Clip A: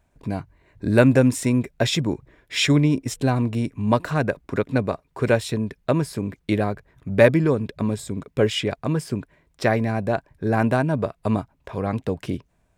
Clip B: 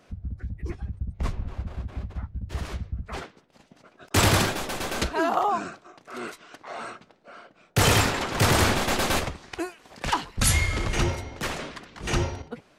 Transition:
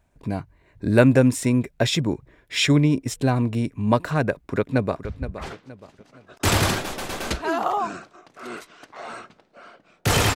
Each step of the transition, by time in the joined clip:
clip A
4.3–5.05 echo throw 0.47 s, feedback 35%, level -11.5 dB
5.05 switch to clip B from 2.76 s

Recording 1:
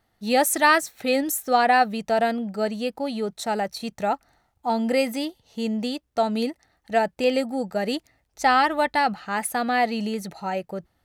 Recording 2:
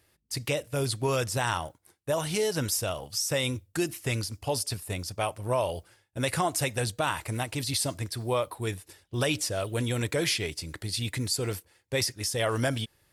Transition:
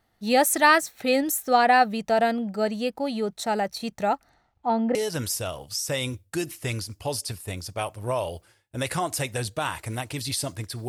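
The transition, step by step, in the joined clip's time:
recording 1
4.29–4.95 LPF 9000 Hz -> 1400 Hz
4.95 switch to recording 2 from 2.37 s

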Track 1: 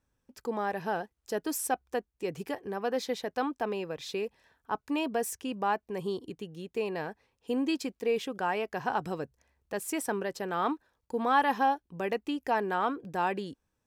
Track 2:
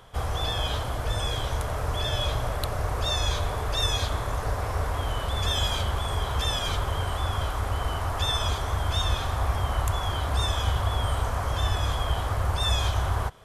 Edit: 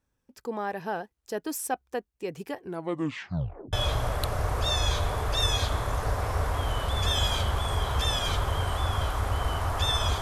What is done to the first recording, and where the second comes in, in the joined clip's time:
track 1
2.6 tape stop 1.13 s
3.73 switch to track 2 from 2.13 s

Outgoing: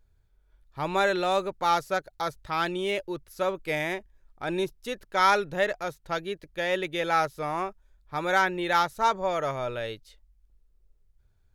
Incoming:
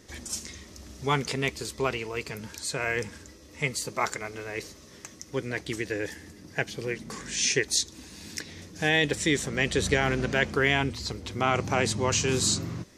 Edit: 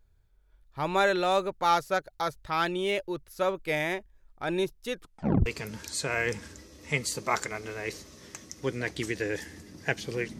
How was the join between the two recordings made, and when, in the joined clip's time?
outgoing
4.92 tape stop 0.54 s
5.46 switch to incoming from 2.16 s

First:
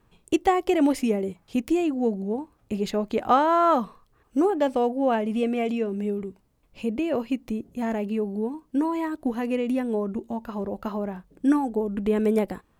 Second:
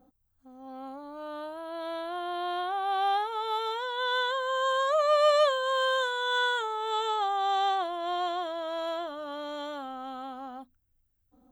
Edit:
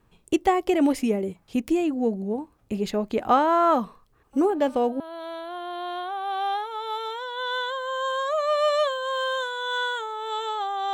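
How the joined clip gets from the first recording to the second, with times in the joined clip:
first
4.33 add second from 0.94 s 0.67 s -8.5 dB
5 switch to second from 1.61 s

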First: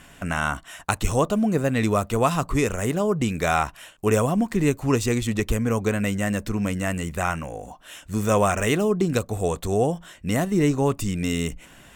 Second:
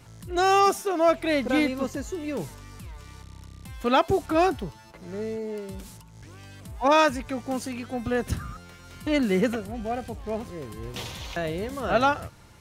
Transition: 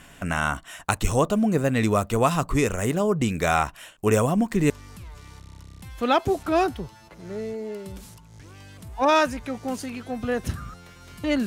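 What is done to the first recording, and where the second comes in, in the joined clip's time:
first
4.7 switch to second from 2.53 s

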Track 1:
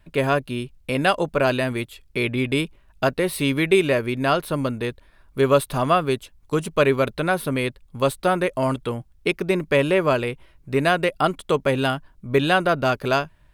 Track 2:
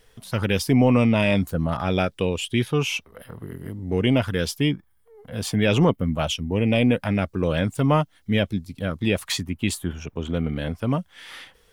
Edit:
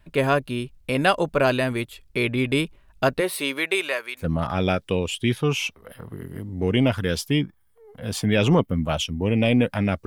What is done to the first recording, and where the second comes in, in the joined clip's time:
track 1
3.2–4.27 HPF 290 Hz -> 1400 Hz
4.21 switch to track 2 from 1.51 s, crossfade 0.12 s

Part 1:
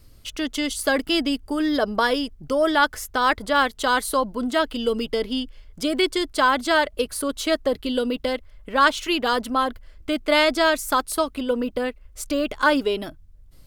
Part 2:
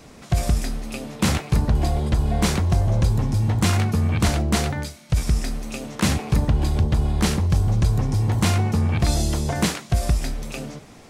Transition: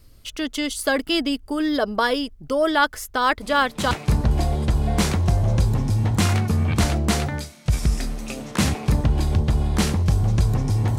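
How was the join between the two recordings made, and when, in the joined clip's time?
part 1
3.41 add part 2 from 0.85 s 0.50 s -9 dB
3.91 switch to part 2 from 1.35 s

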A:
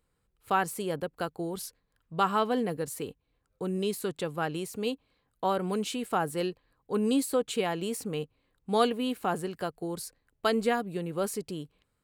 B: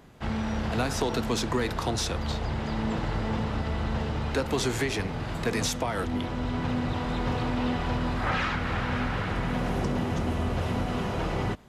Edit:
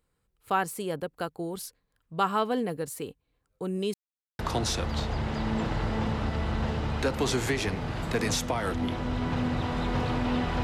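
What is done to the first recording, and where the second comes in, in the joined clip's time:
A
3.94–4.39 mute
4.39 switch to B from 1.71 s

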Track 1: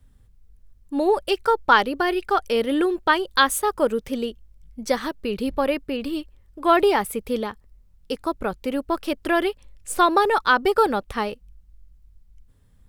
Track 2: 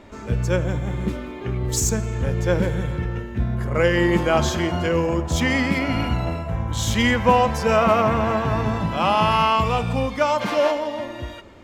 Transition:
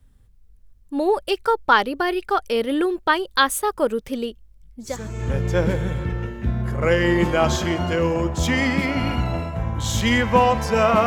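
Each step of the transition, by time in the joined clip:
track 1
4.99 switch to track 2 from 1.92 s, crossfade 0.52 s quadratic

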